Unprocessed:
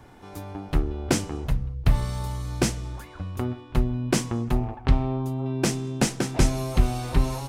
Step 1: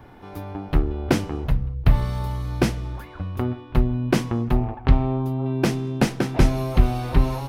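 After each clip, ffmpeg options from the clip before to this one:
ffmpeg -i in.wav -af "equalizer=frequency=7700:width=0.97:gain=-13.5,volume=3.5dB" out.wav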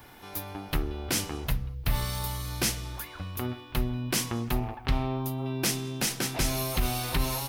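ffmpeg -i in.wav -af "crystalizer=i=10:c=0,alimiter=limit=-7.5dB:level=0:latency=1:release=56,volume=-8dB" out.wav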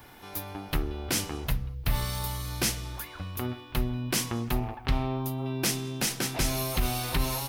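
ffmpeg -i in.wav -af anull out.wav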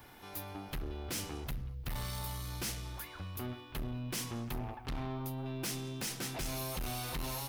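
ffmpeg -i in.wav -af "asoftclip=type=tanh:threshold=-29.5dB,volume=-4.5dB" out.wav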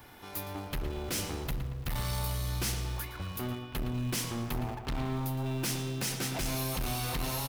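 ffmpeg -i in.wav -filter_complex "[0:a]asplit=2[link_01][link_02];[link_02]acrusher=bits=6:mix=0:aa=0.000001,volume=-11.5dB[link_03];[link_01][link_03]amix=inputs=2:normalize=0,asplit=2[link_04][link_05];[link_05]adelay=114,lowpass=frequency=4400:poles=1,volume=-9dB,asplit=2[link_06][link_07];[link_07]adelay=114,lowpass=frequency=4400:poles=1,volume=0.48,asplit=2[link_08][link_09];[link_09]adelay=114,lowpass=frequency=4400:poles=1,volume=0.48,asplit=2[link_10][link_11];[link_11]adelay=114,lowpass=frequency=4400:poles=1,volume=0.48,asplit=2[link_12][link_13];[link_13]adelay=114,lowpass=frequency=4400:poles=1,volume=0.48[link_14];[link_04][link_06][link_08][link_10][link_12][link_14]amix=inputs=6:normalize=0,volume=2.5dB" out.wav

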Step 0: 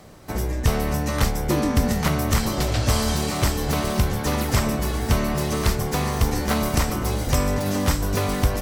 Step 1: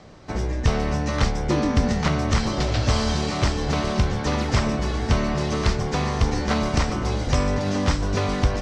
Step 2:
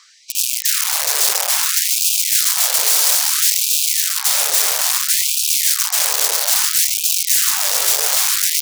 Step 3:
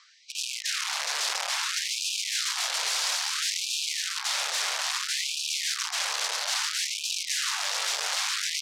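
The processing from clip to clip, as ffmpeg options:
ffmpeg -i in.wav -af "lowpass=frequency=6200:width=0.5412,lowpass=frequency=6200:width=1.3066" out.wav
ffmpeg -i in.wav -af "aeval=exprs='(mod(11.2*val(0)+1,2)-1)/11.2':channel_layout=same,bass=frequency=250:gain=-13,treble=frequency=4000:gain=14,afftfilt=real='re*gte(b*sr/1024,370*pow(2400/370,0.5+0.5*sin(2*PI*0.6*pts/sr)))':imag='im*gte(b*sr/1024,370*pow(2400/370,0.5+0.5*sin(2*PI*0.6*pts/sr)))':win_size=1024:overlap=0.75,volume=2dB" out.wav
ffmpeg -i in.wav -af "highpass=800,lowpass=4600,volume=-5.5dB" out.wav

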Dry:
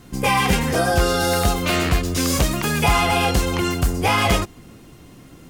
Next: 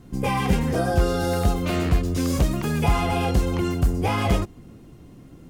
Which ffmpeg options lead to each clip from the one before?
ffmpeg -i in.wav -af "tiltshelf=frequency=750:gain=5.5,volume=-5.5dB" out.wav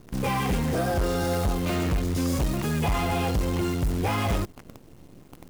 ffmpeg -i in.wav -af "asoftclip=type=tanh:threshold=-20dB,acrusher=bits=7:dc=4:mix=0:aa=0.000001" out.wav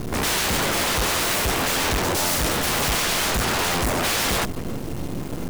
ffmpeg -i in.wav -af "aeval=exprs='0.106*sin(PI/2*7.94*val(0)/0.106)':channel_layout=same" out.wav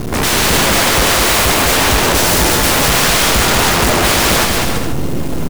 ffmpeg -i in.wav -af "aecho=1:1:200|330|414.5|469.4|505.1:0.631|0.398|0.251|0.158|0.1,volume=8dB" out.wav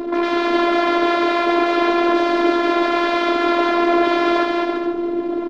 ffmpeg -i in.wav -af "highpass=frequency=190:width=0.5412,highpass=frequency=190:width=1.3066,equalizer=frequency=290:width_type=q:width=4:gain=7,equalizer=frequency=510:width_type=q:width=4:gain=9,equalizer=frequency=1900:width_type=q:width=4:gain=-5,equalizer=frequency=2800:width_type=q:width=4:gain=-10,lowpass=frequency=3100:width=0.5412,lowpass=frequency=3100:width=1.3066,afftfilt=real='hypot(re,im)*cos(PI*b)':imag='0':win_size=512:overlap=0.75" out.wav

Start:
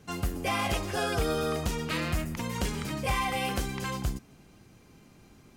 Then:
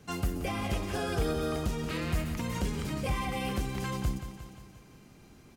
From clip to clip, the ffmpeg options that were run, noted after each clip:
ffmpeg -i in.wav -filter_complex "[0:a]aecho=1:1:177|354|531|708|885|1062:0.266|0.146|0.0805|0.0443|0.0243|0.0134,acrossover=split=460[link_01][link_02];[link_02]alimiter=level_in=3.5dB:limit=-24dB:level=0:latency=1:release=443,volume=-3.5dB[link_03];[link_01][link_03]amix=inputs=2:normalize=0" out.wav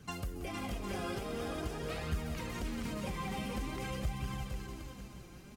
ffmpeg -i in.wav -filter_complex "[0:a]acompressor=threshold=-37dB:ratio=4,asplit=2[link_01][link_02];[link_02]aecho=0:1:460|759|953.4|1080|1162:0.631|0.398|0.251|0.158|0.1[link_03];[link_01][link_03]amix=inputs=2:normalize=0,flanger=delay=0.6:depth=5.2:regen=39:speed=0.47:shape=triangular,volume=3dB" out.wav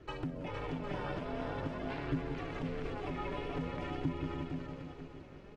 ffmpeg -i in.wav -af "lowpass=2700,aeval=exprs='val(0)*sin(2*PI*210*n/s)':channel_layout=same,volume=3dB" out.wav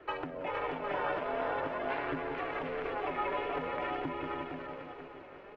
ffmpeg -i in.wav -filter_complex "[0:a]acrossover=split=410 2900:gain=0.1 1 0.0794[link_01][link_02][link_03];[link_01][link_02][link_03]amix=inputs=3:normalize=0,volume=9dB" out.wav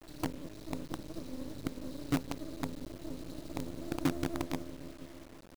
ffmpeg -i in.wav -filter_complex "[0:a]asplit=2[link_01][link_02];[link_02]adelay=110,highpass=300,lowpass=3400,asoftclip=type=hard:threshold=-29.5dB,volume=-9dB[link_03];[link_01][link_03]amix=inputs=2:normalize=0,afftfilt=real='re*(1-between(b*sr/4096,350,3800))':imag='im*(1-between(b*sr/4096,350,3800))':win_size=4096:overlap=0.75,acrusher=bits=7:dc=4:mix=0:aa=0.000001,volume=8.5dB" out.wav

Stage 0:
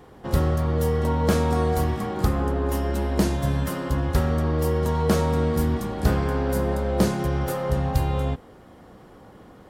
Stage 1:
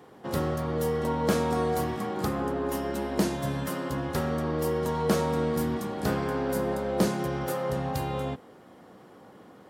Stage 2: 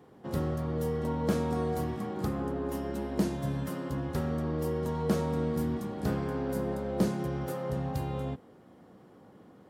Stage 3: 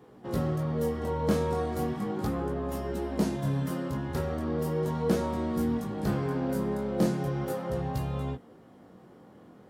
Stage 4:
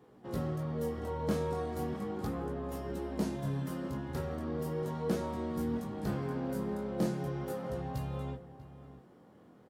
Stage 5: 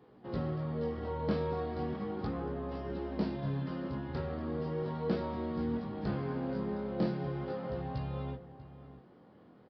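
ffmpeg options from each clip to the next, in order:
ffmpeg -i in.wav -af "highpass=160,volume=-2.5dB" out.wav
ffmpeg -i in.wav -af "lowshelf=frequency=380:gain=9,volume=-8.5dB" out.wav
ffmpeg -i in.wav -af "flanger=delay=16:depth=7.9:speed=0.37,volume=5dB" out.wav
ffmpeg -i in.wav -filter_complex "[0:a]asplit=2[link_01][link_02];[link_02]adelay=641.4,volume=-14dB,highshelf=frequency=4000:gain=-14.4[link_03];[link_01][link_03]amix=inputs=2:normalize=0,volume=-6dB" out.wav
ffmpeg -i in.wav -af "aresample=11025,aresample=44100" out.wav

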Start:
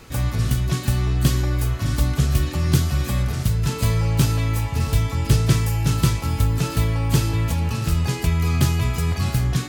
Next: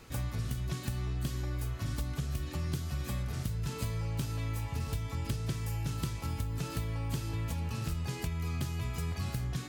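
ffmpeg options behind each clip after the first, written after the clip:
ffmpeg -i in.wav -af "acompressor=threshold=-22dB:ratio=6,volume=-9dB" out.wav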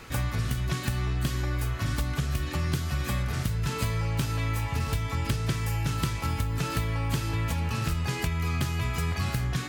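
ffmpeg -i in.wav -af "equalizer=frequency=1700:width_type=o:width=2:gain=6,volume=6dB" out.wav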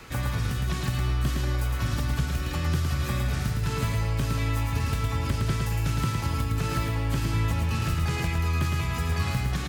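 ffmpeg -i in.wav -filter_complex "[0:a]acrossover=split=300|430|2100[link_01][link_02][link_03][link_04];[link_04]alimiter=level_in=6dB:limit=-24dB:level=0:latency=1,volume=-6dB[link_05];[link_01][link_02][link_03][link_05]amix=inputs=4:normalize=0,aecho=1:1:111|222|333|444:0.668|0.221|0.0728|0.024" out.wav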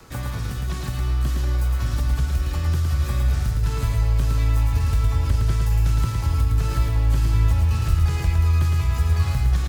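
ffmpeg -i in.wav -filter_complex "[0:a]asubboost=boost=7:cutoff=69,acrossover=split=360|1700|3400[link_01][link_02][link_03][link_04];[link_03]acrusher=bits=5:dc=4:mix=0:aa=0.000001[link_05];[link_01][link_02][link_05][link_04]amix=inputs=4:normalize=0" out.wav

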